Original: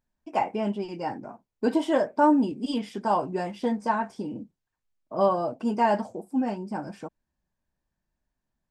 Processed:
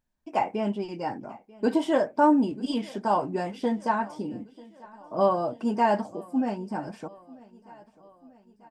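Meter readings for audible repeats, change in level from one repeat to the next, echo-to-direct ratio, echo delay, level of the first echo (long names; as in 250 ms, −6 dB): 3, −5.0 dB, −21.0 dB, 940 ms, −22.5 dB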